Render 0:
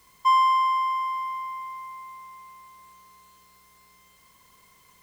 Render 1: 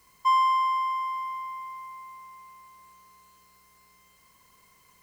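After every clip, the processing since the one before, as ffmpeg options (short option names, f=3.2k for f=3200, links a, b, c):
-af "bandreject=f=3.5k:w=8.9,volume=-2.5dB"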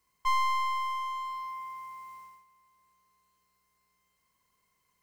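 -af "agate=range=-13dB:threshold=-47dB:ratio=16:detection=peak,aeval=exprs='clip(val(0),-1,0.02)':c=same,volume=-2dB"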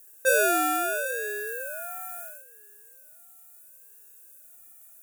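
-af "aexciter=amount=5.7:drive=9.8:freq=7.2k,aeval=exprs='val(0)*sin(2*PI*470*n/s+470*0.35/0.74*sin(2*PI*0.74*n/s))':c=same,volume=7dB"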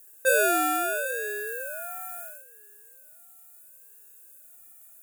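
-af "bandreject=f=5.8k:w=11"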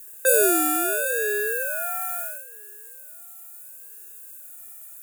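-filter_complex "[0:a]acrossover=split=570|6800[a][b][c];[a]bandpass=f=400:t=q:w=2.1:csg=0[d];[b]acompressor=threshold=-35dB:ratio=6[e];[d][e][c]amix=inputs=3:normalize=0,volume=9dB"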